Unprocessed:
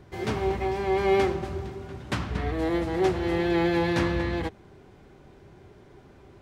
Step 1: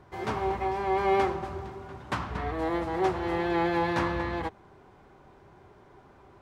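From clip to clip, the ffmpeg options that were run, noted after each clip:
-af "equalizer=f=1k:t=o:w=1.4:g=10.5,volume=-6dB"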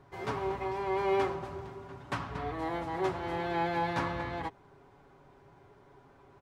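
-af "aecho=1:1:7.2:0.45,volume=-4.5dB"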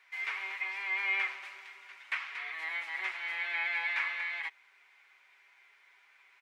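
-filter_complex "[0:a]acrossover=split=2900[a][b];[b]acompressor=threshold=-57dB:ratio=4:attack=1:release=60[c];[a][c]amix=inputs=2:normalize=0,highpass=f=2.2k:t=q:w=4.8,volume=2dB"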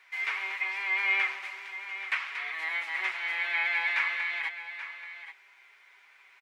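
-af "aecho=1:1:830:0.251,volume=4.5dB"

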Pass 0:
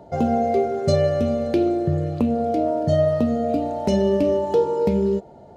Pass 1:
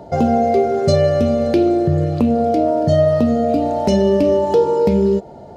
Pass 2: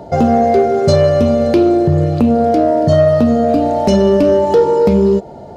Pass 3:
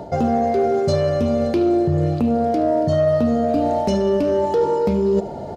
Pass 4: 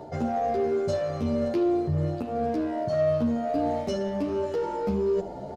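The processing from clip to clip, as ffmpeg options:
-filter_complex "[0:a]equalizer=f=5k:t=o:w=0.4:g=3.5,asplit=2[a][b];[b]alimiter=limit=-18.5dB:level=0:latency=1:release=133,volume=0.5dB[c];[a][c]amix=inputs=2:normalize=0,volume=1.5dB"
-af "asoftclip=type=tanh:threshold=-5.5dB,volume=4.5dB"
-af "areverse,acompressor=threshold=-19dB:ratio=5,areverse,aecho=1:1:74:0.188,volume=2.5dB"
-filter_complex "[0:a]asplit=2[a][b];[b]asoftclip=type=tanh:threshold=-24.5dB,volume=-6.5dB[c];[a][c]amix=inputs=2:normalize=0,asplit=2[d][e];[e]adelay=10.6,afreqshift=1.6[f];[d][f]amix=inputs=2:normalize=1,volume=-7dB"

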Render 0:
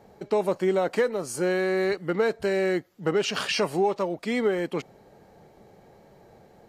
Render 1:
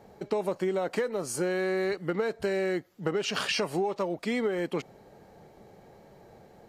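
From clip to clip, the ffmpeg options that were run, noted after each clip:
-af "acompressor=threshold=-25dB:ratio=6"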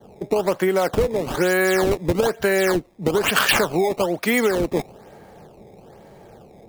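-filter_complex "[0:a]adynamicequalizer=threshold=0.00447:dfrequency=1700:dqfactor=0.7:tfrequency=1700:tqfactor=0.7:attack=5:release=100:ratio=0.375:range=3.5:mode=boostabove:tftype=bell,acrossover=split=100|850[a][b][c];[c]acrusher=samples=17:mix=1:aa=0.000001:lfo=1:lforange=27.2:lforate=1.1[d];[a][b][d]amix=inputs=3:normalize=0,volume=8dB"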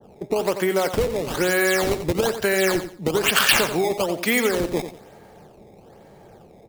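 -filter_complex "[0:a]asplit=2[a][b];[b]aecho=0:1:89|178|267:0.316|0.0854|0.0231[c];[a][c]amix=inputs=2:normalize=0,adynamicequalizer=threshold=0.02:dfrequency=2000:dqfactor=0.7:tfrequency=2000:tqfactor=0.7:attack=5:release=100:ratio=0.375:range=2.5:mode=boostabove:tftype=highshelf,volume=-2.5dB"

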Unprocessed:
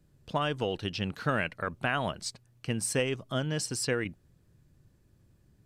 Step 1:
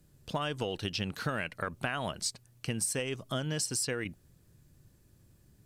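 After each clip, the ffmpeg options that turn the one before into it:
-af "aemphasis=mode=production:type=cd,acompressor=threshold=-31dB:ratio=6,volume=1.5dB"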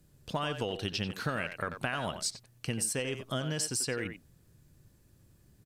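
-filter_complex "[0:a]asplit=2[a][b];[b]adelay=90,highpass=300,lowpass=3.4k,asoftclip=type=hard:threshold=-25dB,volume=-8dB[c];[a][c]amix=inputs=2:normalize=0"

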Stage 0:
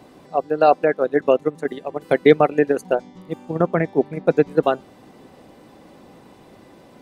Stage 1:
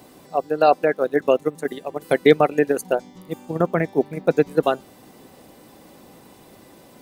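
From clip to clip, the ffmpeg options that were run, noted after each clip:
-af "aemphasis=mode=production:type=50fm,volume=-1dB"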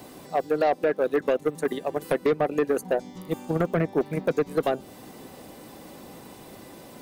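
-filter_complex "[0:a]acrossover=split=760|1900[a][b][c];[a]acompressor=threshold=-19dB:ratio=4[d];[b]acompressor=threshold=-36dB:ratio=4[e];[c]acompressor=threshold=-43dB:ratio=4[f];[d][e][f]amix=inputs=3:normalize=0,asoftclip=type=tanh:threshold=-18.5dB,volume=3dB"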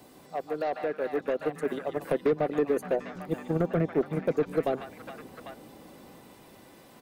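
-filter_complex "[0:a]acrossover=split=710|4600[a][b][c];[a]dynaudnorm=f=260:g=11:m=7dB[d];[b]aecho=1:1:146|421|797:0.708|0.531|0.631[e];[d][e][c]amix=inputs=3:normalize=0,volume=-8.5dB"

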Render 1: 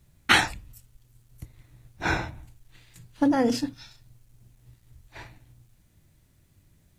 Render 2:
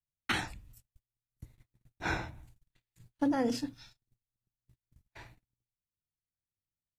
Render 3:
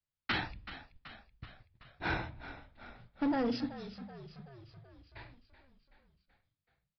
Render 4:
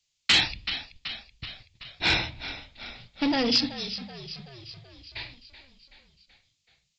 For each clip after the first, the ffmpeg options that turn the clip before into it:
-filter_complex "[0:a]agate=range=-32dB:threshold=-48dB:ratio=16:detection=peak,acrossover=split=350[a][b];[b]alimiter=limit=-12dB:level=0:latency=1:release=454[c];[a][c]amix=inputs=2:normalize=0,volume=-7.5dB"
-filter_complex "[0:a]aresample=11025,asoftclip=type=hard:threshold=-27dB,aresample=44100,asplit=8[a][b][c][d][e][f][g][h];[b]adelay=379,afreqshift=-44,volume=-13.5dB[i];[c]adelay=758,afreqshift=-88,volume=-17.8dB[j];[d]adelay=1137,afreqshift=-132,volume=-22.1dB[k];[e]adelay=1516,afreqshift=-176,volume=-26.4dB[l];[f]adelay=1895,afreqshift=-220,volume=-30.7dB[m];[g]adelay=2274,afreqshift=-264,volume=-35dB[n];[h]adelay=2653,afreqshift=-308,volume=-39.3dB[o];[a][i][j][k][l][m][n][o]amix=inputs=8:normalize=0"
-af "aexciter=amount=5.6:drive=6.5:freq=2.2k,aresample=16000,asoftclip=type=hard:threshold=-20.5dB,aresample=44100,volume=5.5dB"

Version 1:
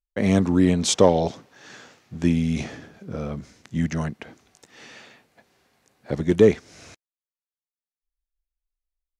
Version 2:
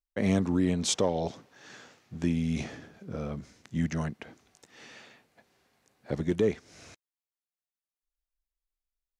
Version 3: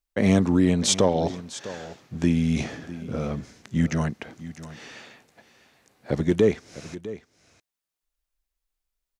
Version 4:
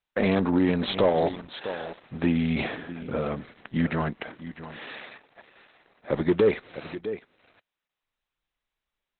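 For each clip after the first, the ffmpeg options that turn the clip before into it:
-af "alimiter=limit=-11dB:level=0:latency=1:release=327,volume=-5dB"
-af "aecho=1:1:653:0.168,volume=6.5dB"
-filter_complex "[0:a]asplit=2[a][b];[b]highpass=f=720:p=1,volume=17dB,asoftclip=type=tanh:threshold=-8dB[c];[a][c]amix=inputs=2:normalize=0,lowpass=f=2.3k:p=1,volume=-6dB,volume=-2.5dB" -ar 48000 -c:a libopus -b:a 8k

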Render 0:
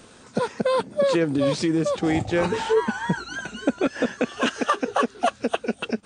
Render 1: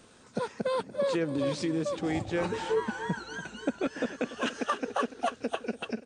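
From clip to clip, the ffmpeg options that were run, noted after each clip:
-af "aecho=1:1:289|578|867|1156|1445:0.188|0.0923|0.0452|0.0222|0.0109,volume=-8dB"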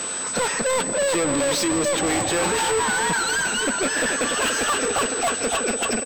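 -filter_complex "[0:a]asplit=2[a][b];[b]highpass=f=720:p=1,volume=34dB,asoftclip=type=tanh:threshold=-16dB[c];[a][c]amix=inputs=2:normalize=0,lowpass=f=6.4k:p=1,volume=-6dB,aeval=exprs='val(0)+0.0447*sin(2*PI*8000*n/s)':c=same,asplit=2[d][e];[e]adelay=157.4,volume=-16dB,highshelf=f=4k:g=-3.54[f];[d][f]amix=inputs=2:normalize=0"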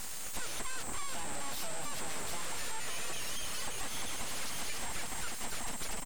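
-af "highshelf=f=8.3k:g=-9.5,acompressor=threshold=-24dB:ratio=6,aeval=exprs='abs(val(0))':c=same,volume=-7dB"

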